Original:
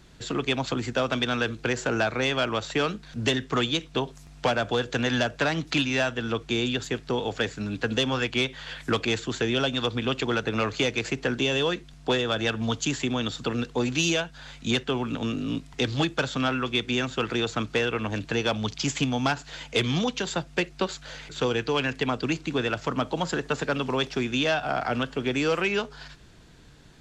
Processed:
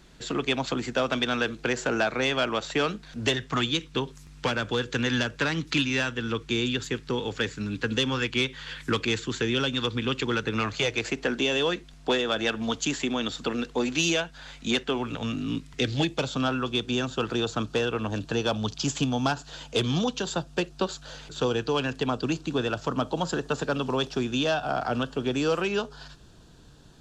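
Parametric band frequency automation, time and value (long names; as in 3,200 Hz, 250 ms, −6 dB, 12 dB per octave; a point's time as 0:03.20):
parametric band −13 dB 0.42 octaves
0:03.10 100 Hz
0:03.70 680 Hz
0:10.56 680 Hz
0:11.09 120 Hz
0:14.94 120 Hz
0:15.36 470 Hz
0:16.40 2,100 Hz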